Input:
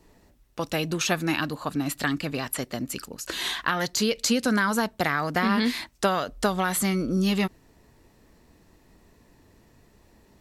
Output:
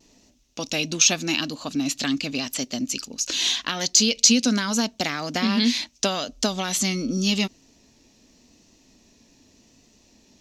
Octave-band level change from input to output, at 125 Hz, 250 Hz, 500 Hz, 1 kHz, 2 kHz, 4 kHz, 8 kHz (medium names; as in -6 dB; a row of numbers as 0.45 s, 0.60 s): -1.5 dB, +2.0 dB, -2.0 dB, -4.5 dB, -1.0 dB, +8.5 dB, +10.5 dB